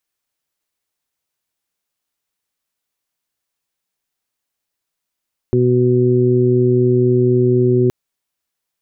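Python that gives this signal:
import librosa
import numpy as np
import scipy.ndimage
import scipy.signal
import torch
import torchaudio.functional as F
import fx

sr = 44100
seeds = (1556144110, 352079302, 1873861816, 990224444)

y = fx.additive_steady(sr, length_s=2.37, hz=124.0, level_db=-15.0, upper_db=(-3.5, 2.0, -17.5))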